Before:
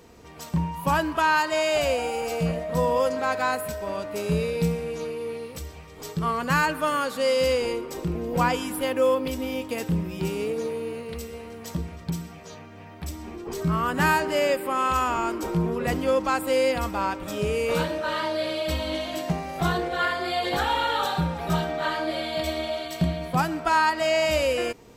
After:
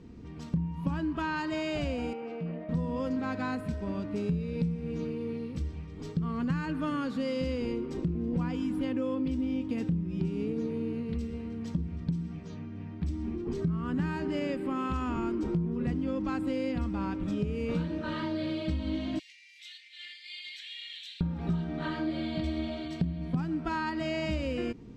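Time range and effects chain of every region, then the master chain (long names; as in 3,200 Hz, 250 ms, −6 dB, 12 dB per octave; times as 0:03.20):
0:02.13–0:02.69: downward compressor 2.5 to 1, threshold −28 dBFS + band-pass filter 310–2,300 Hz
0:19.19–0:21.21: Butterworth high-pass 2,000 Hz 72 dB per octave + single-tap delay 369 ms −15.5 dB + highs frequency-modulated by the lows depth 0.33 ms
whole clip: low-pass filter 4,800 Hz 12 dB per octave; low shelf with overshoot 390 Hz +13 dB, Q 1.5; downward compressor 6 to 1, threshold −19 dBFS; level −8.5 dB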